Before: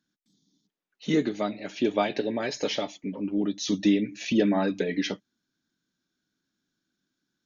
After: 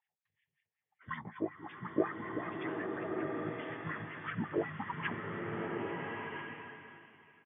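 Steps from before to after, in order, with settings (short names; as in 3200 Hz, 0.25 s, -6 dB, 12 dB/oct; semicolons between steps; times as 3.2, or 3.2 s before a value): pitch shift -11.5 st; delay with a stepping band-pass 0.248 s, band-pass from 1200 Hz, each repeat 0.7 oct, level -11 dB; wah 5.4 Hz 410–2200 Hz, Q 2.9; bloom reverb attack 1.33 s, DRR -0.5 dB; gain +1 dB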